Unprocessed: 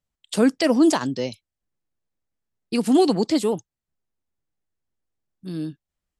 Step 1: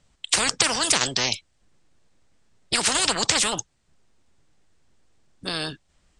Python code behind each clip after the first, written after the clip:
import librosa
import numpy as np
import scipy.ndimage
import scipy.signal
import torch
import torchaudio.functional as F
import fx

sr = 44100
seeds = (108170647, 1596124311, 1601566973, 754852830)

y = scipy.signal.sosfilt(scipy.signal.ellip(4, 1.0, 60, 8600.0, 'lowpass', fs=sr, output='sos'), x)
y = fx.spectral_comp(y, sr, ratio=10.0)
y = F.gain(torch.from_numpy(y), 6.5).numpy()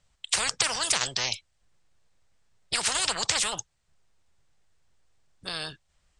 y = fx.peak_eq(x, sr, hz=270.0, db=-10.0, octaves=1.2)
y = F.gain(torch.from_numpy(y), -4.5).numpy()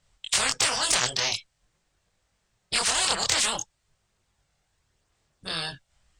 y = fx.diode_clip(x, sr, knee_db=-7.5)
y = fx.chorus_voices(y, sr, voices=2, hz=0.48, base_ms=23, depth_ms=4.0, mix_pct=50)
y = F.gain(torch.from_numpy(y), 6.0).numpy()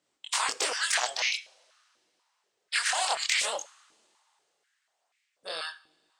y = fx.rev_double_slope(x, sr, seeds[0], early_s=0.55, late_s=2.8, knee_db=-18, drr_db=16.0)
y = fx.filter_held_highpass(y, sr, hz=4.1, low_hz=310.0, high_hz=2200.0)
y = F.gain(torch.from_numpy(y), -6.5).numpy()